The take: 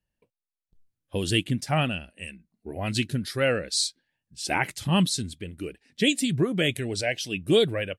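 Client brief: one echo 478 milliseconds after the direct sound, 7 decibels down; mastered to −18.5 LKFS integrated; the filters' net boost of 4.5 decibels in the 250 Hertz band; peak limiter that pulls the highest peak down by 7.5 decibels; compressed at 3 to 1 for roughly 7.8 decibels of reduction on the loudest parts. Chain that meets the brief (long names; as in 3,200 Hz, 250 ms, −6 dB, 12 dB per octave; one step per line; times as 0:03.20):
parametric band 250 Hz +6 dB
downward compressor 3 to 1, threshold −25 dBFS
brickwall limiter −20.5 dBFS
single-tap delay 478 ms −7 dB
level +12.5 dB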